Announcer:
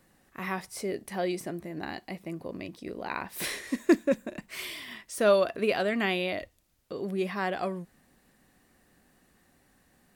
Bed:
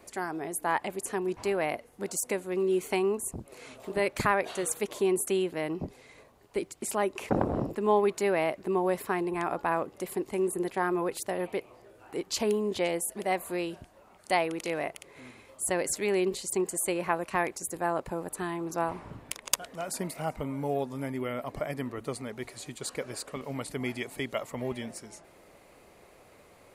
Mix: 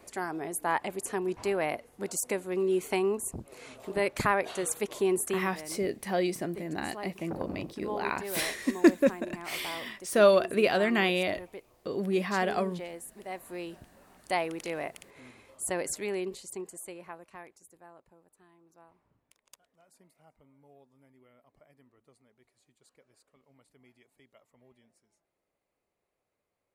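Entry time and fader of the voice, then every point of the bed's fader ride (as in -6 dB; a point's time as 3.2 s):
4.95 s, +2.0 dB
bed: 5.27 s -0.5 dB
5.5 s -12 dB
13.21 s -12 dB
13.88 s -3 dB
15.87 s -3 dB
18.29 s -28.5 dB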